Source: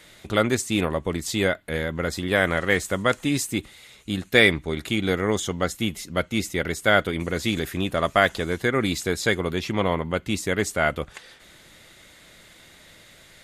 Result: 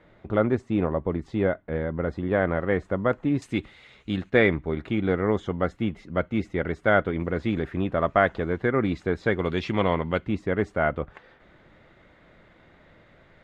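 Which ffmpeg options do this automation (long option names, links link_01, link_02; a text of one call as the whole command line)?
ffmpeg -i in.wav -af "asetnsamples=nb_out_samples=441:pad=0,asendcmd='3.42 lowpass f 2700;4.3 lowpass f 1500;9.39 lowpass f 3400;10.26 lowpass f 1400',lowpass=1100" out.wav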